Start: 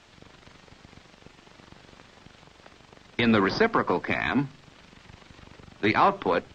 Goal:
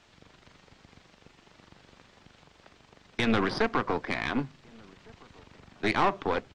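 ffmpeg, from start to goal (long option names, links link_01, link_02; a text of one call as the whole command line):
ffmpeg -i in.wav -filter_complex "[0:a]aeval=exprs='(tanh(6.31*val(0)+0.8)-tanh(0.8))/6.31':channel_layout=same,asplit=2[link_01][link_02];[link_02]adelay=1458,volume=-26dB,highshelf=frequency=4000:gain=-32.8[link_03];[link_01][link_03]amix=inputs=2:normalize=0" out.wav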